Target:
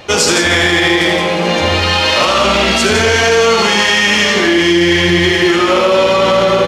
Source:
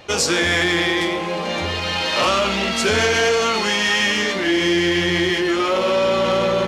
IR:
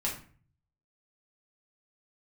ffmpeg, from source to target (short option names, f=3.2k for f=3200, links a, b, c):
-filter_complex "[0:a]asplit=2[a][b];[b]aecho=0:1:79|169:0.596|0.562[c];[a][c]amix=inputs=2:normalize=0,alimiter=level_in=9.5dB:limit=-1dB:release=50:level=0:latency=1,volume=-1.5dB"